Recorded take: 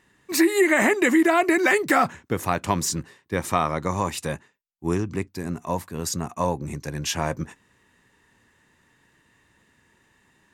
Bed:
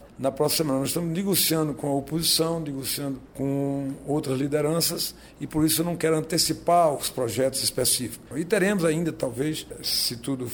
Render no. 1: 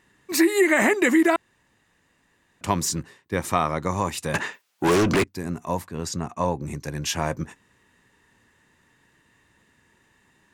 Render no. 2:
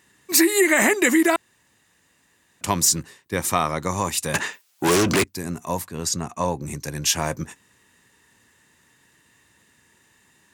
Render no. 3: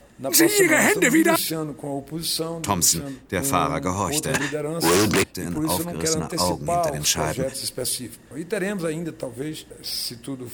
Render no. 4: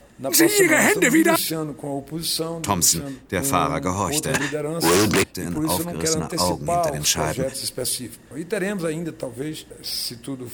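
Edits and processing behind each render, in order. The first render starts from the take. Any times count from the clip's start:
1.36–2.61 s: room tone; 4.34–5.24 s: overdrive pedal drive 36 dB, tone 4.3 kHz, clips at -12 dBFS; 5.85–6.59 s: distance through air 50 m
high-pass 53 Hz; treble shelf 4.1 kHz +11.5 dB
add bed -3.5 dB
trim +1 dB; peak limiter -3 dBFS, peak gain reduction 2 dB

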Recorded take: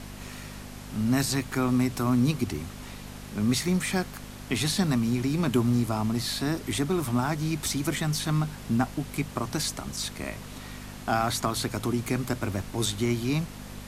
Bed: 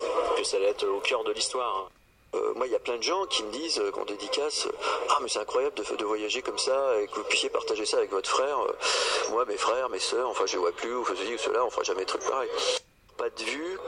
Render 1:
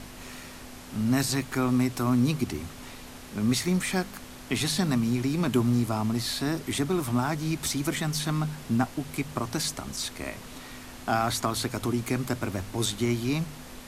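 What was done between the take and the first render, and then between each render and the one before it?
de-hum 50 Hz, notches 4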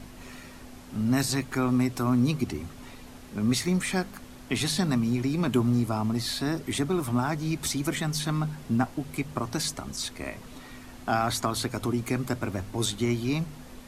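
noise reduction 6 dB, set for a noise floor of -44 dBFS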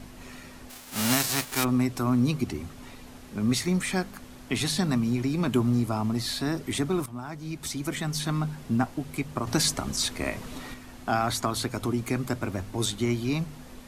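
0.69–1.63 s: formants flattened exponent 0.3; 7.06–8.26 s: fade in, from -14.5 dB; 9.47–10.74 s: gain +5.5 dB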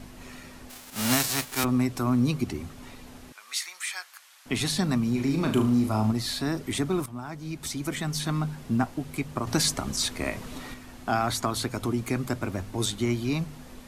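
0.90–1.64 s: three bands expanded up and down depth 40%; 3.32–4.46 s: Bessel high-pass 1.5 kHz, order 4; 5.11–6.12 s: flutter echo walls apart 6.3 m, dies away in 0.38 s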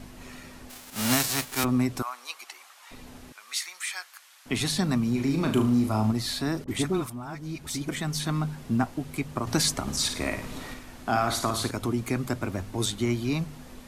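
2.02–2.91 s: high-pass 830 Hz 24 dB/octave; 6.64–7.89 s: phase dispersion highs, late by 41 ms, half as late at 870 Hz; 9.82–11.71 s: flutter echo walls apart 9.4 m, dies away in 0.46 s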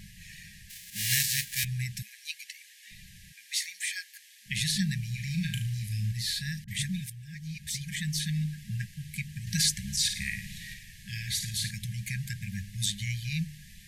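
FFT band-reject 210–1600 Hz; bass shelf 71 Hz -6.5 dB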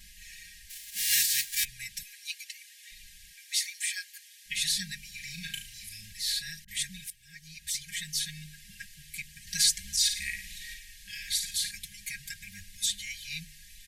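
amplifier tone stack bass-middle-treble 10-0-10; comb 4.3 ms, depth 99%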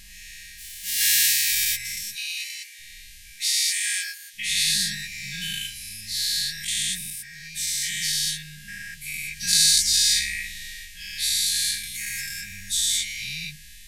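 every event in the spectrogram widened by 240 ms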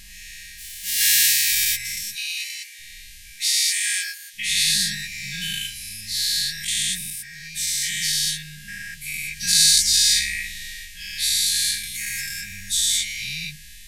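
trim +2.5 dB; peak limiter -1 dBFS, peak gain reduction 1.5 dB

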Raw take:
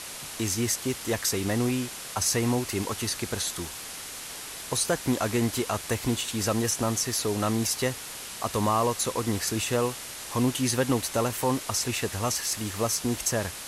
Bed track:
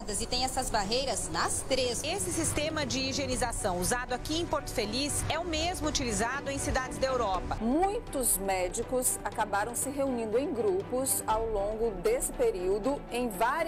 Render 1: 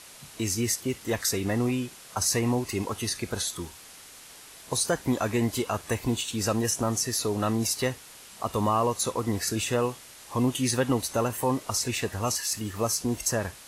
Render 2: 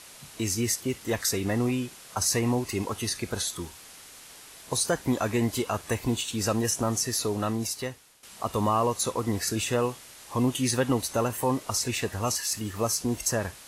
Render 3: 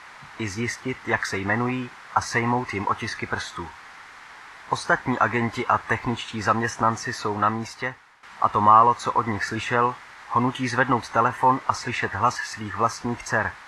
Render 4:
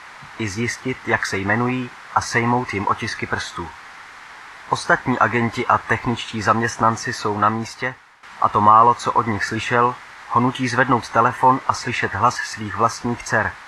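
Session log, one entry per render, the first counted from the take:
noise print and reduce 9 dB
7.22–8.23 s: fade out, to -14 dB
low-pass 4.2 kHz 12 dB/octave; high-order bell 1.3 kHz +13 dB
trim +4.5 dB; peak limiter -1 dBFS, peak gain reduction 2.5 dB

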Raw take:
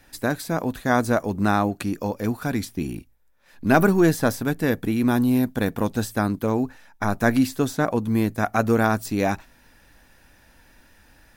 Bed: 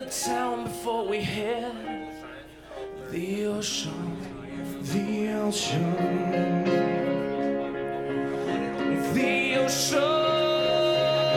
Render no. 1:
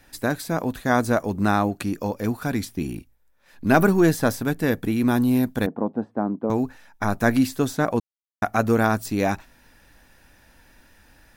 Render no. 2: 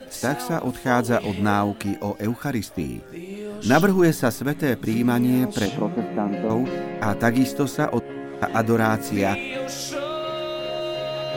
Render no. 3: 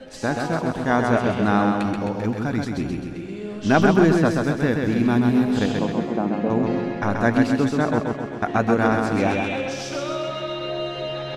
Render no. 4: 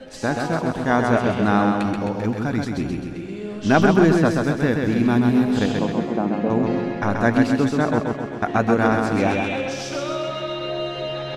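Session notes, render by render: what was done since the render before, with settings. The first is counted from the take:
5.66–6.50 s: Chebyshev band-pass 210–860 Hz; 8.00–8.42 s: mute
add bed -5 dB
distance through air 89 m; feedback delay 131 ms, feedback 57%, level -4 dB
trim +1 dB; peak limiter -3 dBFS, peak gain reduction 1 dB

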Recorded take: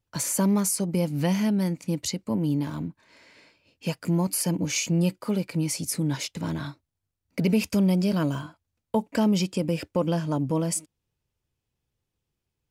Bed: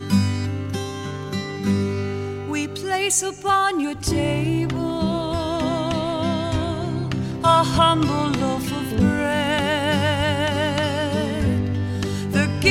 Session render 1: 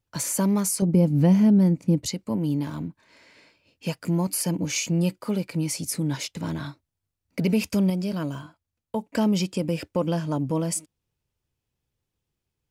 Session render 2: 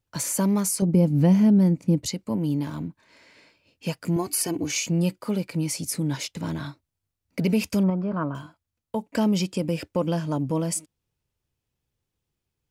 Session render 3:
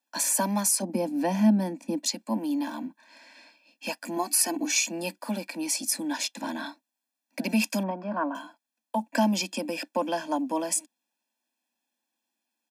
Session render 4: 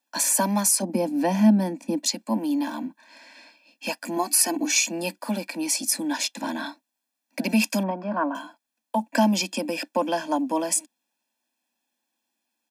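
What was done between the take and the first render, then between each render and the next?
0.82–2.06 s: tilt shelf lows +8 dB, about 790 Hz; 7.90–9.15 s: gain -4 dB
4.16–4.71 s: comb 2.7 ms, depth 77%; 7.83–8.35 s: resonant low-pass 1.2 kHz, resonance Q 3.4
steep high-pass 220 Hz 72 dB/octave; comb 1.2 ms, depth 94%
trim +3.5 dB

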